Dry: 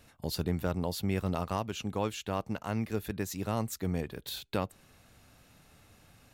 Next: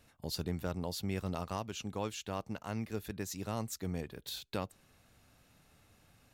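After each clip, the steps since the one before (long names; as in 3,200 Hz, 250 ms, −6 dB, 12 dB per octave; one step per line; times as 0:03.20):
dynamic equaliser 5,800 Hz, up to +5 dB, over −54 dBFS, Q 0.92
level −5.5 dB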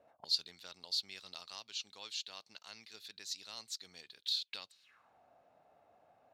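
envelope filter 550–4,200 Hz, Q 4.3, up, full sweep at −42 dBFS
level +11 dB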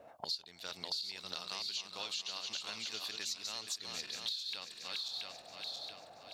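feedback delay that plays each chunk backwards 339 ms, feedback 64%, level −6.5 dB
downward compressor 10 to 1, threshold −47 dBFS, peak gain reduction 21 dB
level +10.5 dB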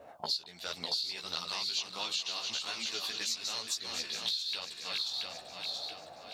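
multi-voice chorus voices 2, 1.4 Hz, delay 15 ms, depth 3 ms
level +8 dB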